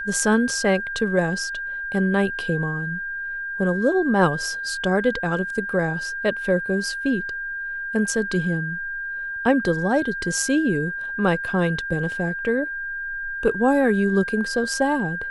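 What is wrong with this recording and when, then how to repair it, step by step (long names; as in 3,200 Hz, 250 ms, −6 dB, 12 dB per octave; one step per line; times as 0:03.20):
whistle 1,600 Hz −27 dBFS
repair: notch filter 1,600 Hz, Q 30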